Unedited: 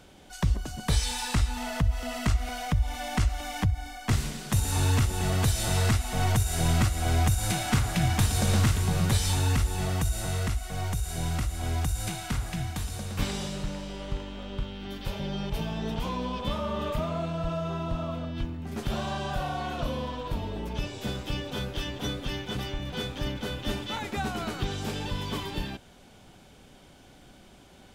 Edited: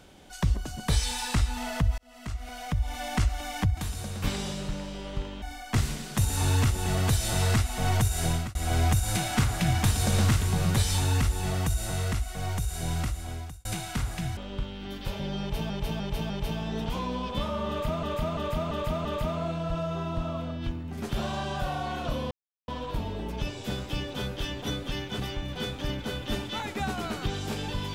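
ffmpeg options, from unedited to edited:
ffmpeg -i in.wav -filter_complex "[0:a]asplit=15[link_01][link_02][link_03][link_04][link_05][link_06][link_07][link_08][link_09][link_10][link_11][link_12][link_13][link_14][link_15];[link_01]atrim=end=1.98,asetpts=PTS-STARTPTS,afade=type=out:start_time=1.976:duration=0.004:curve=hsin[link_16];[link_02]atrim=start=1.98:end=3.772,asetpts=PTS-STARTPTS,afade=type=in:duration=1.05[link_17];[link_03]atrim=start=12.718:end=14.372[link_18];[link_04]atrim=start=3.768:end=6.9,asetpts=PTS-STARTPTS,afade=type=out:start_time=2.832:duration=0.3[link_19];[link_05]atrim=start=6.9:end=12,asetpts=PTS-STARTPTS,afade=type=in:duration=0.004:curve=hsin,afade=type=out:start_time=4.46:duration=0.64[link_20];[link_06]atrim=start=12:end=12.722,asetpts=PTS-STARTPTS,afade=type=in:duration=0.004:curve=hsin[link_21];[link_07]atrim=start=14.368:end=15.702[link_22];[link_08]atrim=start=15.398:end=15.702[link_23];[link_09]atrim=start=15.398:end=15.702[link_24];[link_10]atrim=start=15.398:end=17.132[link_25];[link_11]atrim=start=16.788:end=17.132[link_26];[link_12]atrim=start=16.788:end=17.132[link_27];[link_13]atrim=start=16.788:end=17.132[link_28];[link_14]atrim=start=16.788:end=20.05,asetpts=PTS-STARTPTS,afade=type=out:start_time=3.258:duration=0.004:curve=hsin,apad=pad_dur=0.37[link_29];[link_15]atrim=start=20.05,asetpts=PTS-STARTPTS,afade=type=in:duration=0.004:curve=hsin[link_30];[link_16][link_17]concat=n=2:v=0:a=1[link_31];[link_31][link_18]acrossfade=duration=0.004:curve1=hsin:curve2=hsin[link_32];[link_19][link_20][link_21]concat=n=3:v=0:a=1[link_33];[link_32][link_33]acrossfade=duration=0.004:curve1=hsin:curve2=hsin[link_34];[link_34][link_22]acrossfade=duration=0.004:curve1=hsin:curve2=hsin[link_35];[link_35][link_23]acrossfade=duration=0.004:curve1=hsin:curve2=hsin[link_36];[link_36][link_24]acrossfade=duration=0.004:curve1=hsin:curve2=hsin[link_37];[link_37][link_25]acrossfade=duration=0.004:curve1=hsin:curve2=hsin[link_38];[link_38][link_26]acrossfade=duration=0.004:curve1=hsin:curve2=hsin[link_39];[link_39][link_27]acrossfade=duration=0.004:curve1=hsin:curve2=hsin[link_40];[link_40][link_28]acrossfade=duration=0.004:curve1=hsin:curve2=hsin[link_41];[link_29][link_30]concat=n=2:v=0:a=1[link_42];[link_41][link_42]acrossfade=duration=0.004:curve1=hsin:curve2=hsin" out.wav

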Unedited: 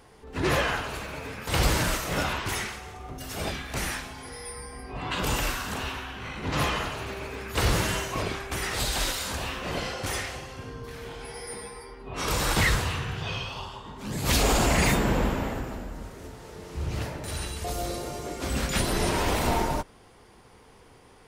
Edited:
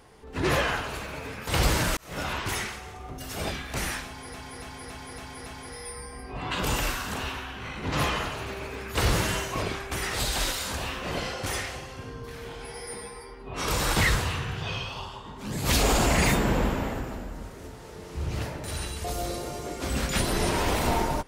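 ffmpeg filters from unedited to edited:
ffmpeg -i in.wav -filter_complex "[0:a]asplit=7[link_01][link_02][link_03][link_04][link_05][link_06][link_07];[link_01]atrim=end=1.97,asetpts=PTS-STARTPTS,afade=type=out:start_time=1.966:duration=0.004:curve=hsin[link_08];[link_02]atrim=start=1.97:end=4.342,asetpts=PTS-STARTPTS,afade=type=in:duration=0.42[link_09];[link_03]atrim=start=4.058:end=4.342[link_10];[link_04]atrim=start=4.058:end=4.342[link_11];[link_05]atrim=start=4.058:end=4.342[link_12];[link_06]atrim=start=4.058:end=4.342[link_13];[link_07]atrim=start=4.058[link_14];[link_08][link_09]concat=n=2:v=0:a=1[link_15];[link_15][link_10]acrossfade=duration=0.004:curve1=hsin:curve2=hsin[link_16];[link_16][link_11]acrossfade=duration=0.004:curve1=hsin:curve2=hsin[link_17];[link_17][link_12]acrossfade=duration=0.004:curve1=hsin:curve2=hsin[link_18];[link_18][link_13]acrossfade=duration=0.004:curve1=hsin:curve2=hsin[link_19];[link_19][link_14]acrossfade=duration=0.004:curve1=hsin:curve2=hsin" out.wav

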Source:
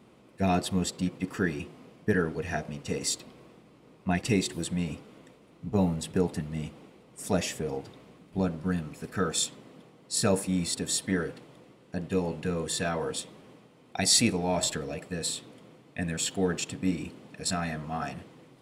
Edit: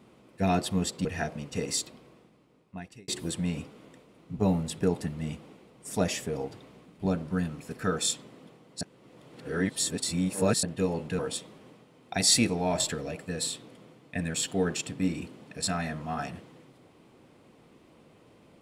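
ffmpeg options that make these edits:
ffmpeg -i in.wav -filter_complex "[0:a]asplit=6[link_01][link_02][link_03][link_04][link_05][link_06];[link_01]atrim=end=1.052[link_07];[link_02]atrim=start=2.378:end=4.41,asetpts=PTS-STARTPTS,afade=type=out:start_time=0.662:duration=1.37[link_08];[link_03]atrim=start=4.41:end=10.142,asetpts=PTS-STARTPTS,afade=type=in:duration=0.004:curve=hsin[link_09];[link_04]atrim=start=10.138:end=11.962,asetpts=PTS-STARTPTS,areverse[link_10];[link_05]atrim=start=11.958:end=12.522[link_11];[link_06]atrim=start=13.018[link_12];[link_08][link_09]concat=n=2:v=0:a=1[link_13];[link_07][link_13]acrossfade=duration=0.004:curve1=hsin:curve2=hsin[link_14];[link_14][link_10]acrossfade=duration=0.004:curve1=hsin:curve2=hsin[link_15];[link_15][link_11]acrossfade=duration=0.004:curve1=hsin:curve2=hsin[link_16];[link_16][link_12]acrossfade=duration=0.004:curve1=hsin:curve2=hsin" out.wav

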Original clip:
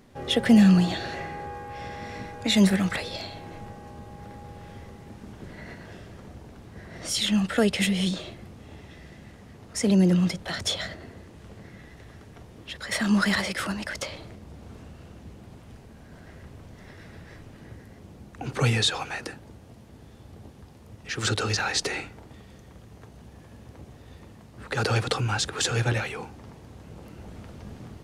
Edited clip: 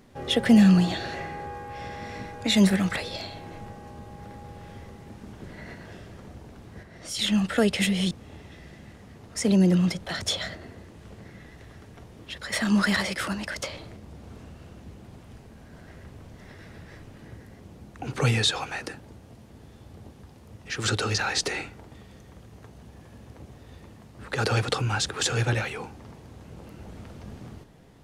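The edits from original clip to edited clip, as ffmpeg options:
ffmpeg -i in.wav -filter_complex "[0:a]asplit=4[link_01][link_02][link_03][link_04];[link_01]atrim=end=6.832[link_05];[link_02]atrim=start=6.828:end=7.192,asetpts=PTS-STARTPTS,volume=-5.5dB[link_06];[link_03]atrim=start=7.188:end=8.112[link_07];[link_04]atrim=start=8.498[link_08];[link_05][link_06]acrossfade=duration=0.004:curve1=hsin:curve2=hsin[link_09];[link_09][link_07]acrossfade=duration=0.004:curve1=hsin:curve2=hsin[link_10];[link_10][link_08]acrossfade=duration=0.004:curve1=hsin:curve2=hsin" out.wav

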